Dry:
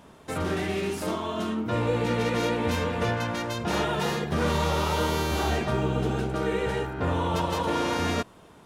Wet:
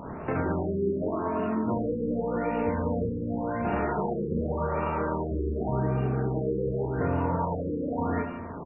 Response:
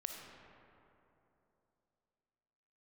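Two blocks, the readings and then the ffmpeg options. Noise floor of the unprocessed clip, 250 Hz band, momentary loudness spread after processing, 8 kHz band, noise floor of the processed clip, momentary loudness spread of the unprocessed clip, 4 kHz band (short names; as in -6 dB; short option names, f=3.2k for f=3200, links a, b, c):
-51 dBFS, 0.0 dB, 3 LU, under -40 dB, -37 dBFS, 4 LU, under -25 dB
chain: -filter_complex "[0:a]acompressor=threshold=-40dB:ratio=6,aecho=1:1:30|67.5|114.4|173|246.2:0.631|0.398|0.251|0.158|0.1,asplit=2[a][b];[1:a]atrim=start_sample=2205,afade=t=out:st=0.43:d=0.01,atrim=end_sample=19404,lowpass=1.8k[c];[b][c]afir=irnorm=-1:irlink=0,volume=1.5dB[d];[a][d]amix=inputs=2:normalize=0,afftfilt=real='re*lt(b*sr/1024,530*pow(2900/530,0.5+0.5*sin(2*PI*0.87*pts/sr)))':imag='im*lt(b*sr/1024,530*pow(2900/530,0.5+0.5*sin(2*PI*0.87*pts/sr)))':win_size=1024:overlap=0.75,volume=7dB"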